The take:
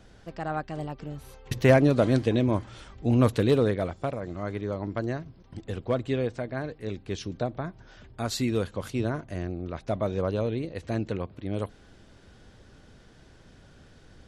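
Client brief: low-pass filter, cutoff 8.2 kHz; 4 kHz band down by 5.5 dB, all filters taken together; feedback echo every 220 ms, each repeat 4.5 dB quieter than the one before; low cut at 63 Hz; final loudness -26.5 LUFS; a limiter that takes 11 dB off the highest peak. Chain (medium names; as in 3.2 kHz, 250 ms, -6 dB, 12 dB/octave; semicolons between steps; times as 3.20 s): high-pass 63 Hz; low-pass 8.2 kHz; peaking EQ 4 kHz -6.5 dB; peak limiter -17 dBFS; feedback delay 220 ms, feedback 60%, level -4.5 dB; trim +3 dB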